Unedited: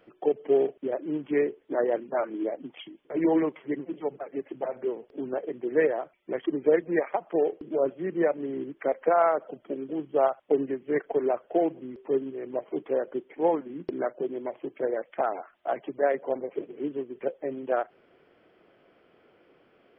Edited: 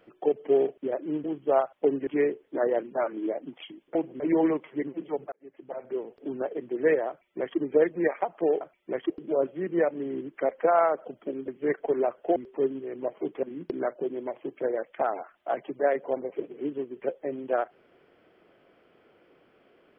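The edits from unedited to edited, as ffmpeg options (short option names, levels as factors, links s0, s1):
-filter_complex "[0:a]asplit=11[s0][s1][s2][s3][s4][s5][s6][s7][s8][s9][s10];[s0]atrim=end=1.242[s11];[s1]atrim=start=9.908:end=10.742[s12];[s2]atrim=start=1.238:end=3.122[s13];[s3]atrim=start=11.618:end=11.872[s14];[s4]atrim=start=3.118:end=4.24,asetpts=PTS-STARTPTS,afade=t=out:st=1.118:d=0.004:c=hsin[s15];[s5]atrim=start=4.24:end=7.532,asetpts=PTS-STARTPTS,afade=t=in:d=0.81[s16];[s6]atrim=start=6.008:end=6.502[s17];[s7]atrim=start=7.528:end=9.912[s18];[s8]atrim=start=10.738:end=11.622[s19];[s9]atrim=start=11.868:end=12.942[s20];[s10]atrim=start=13.618[s21];[s11][s12]acrossfade=d=0.004:c1=hsin:c2=hsin[s22];[s22][s13]acrossfade=d=0.004:c1=hsin:c2=hsin[s23];[s23][s14]acrossfade=d=0.004:c1=hsin:c2=hsin[s24];[s15][s16]concat=n=2:v=0:a=1[s25];[s24][s25]acrossfade=d=0.004:c1=hsin:c2=hsin[s26];[s26][s17]acrossfade=d=0.004:c1=hsin:c2=hsin[s27];[s27][s18]acrossfade=d=0.004:c1=hsin:c2=hsin[s28];[s28][s19]acrossfade=d=0.004:c1=hsin:c2=hsin[s29];[s29][s20]acrossfade=d=0.004:c1=hsin:c2=hsin[s30];[s30][s21]acrossfade=d=0.004:c1=hsin:c2=hsin"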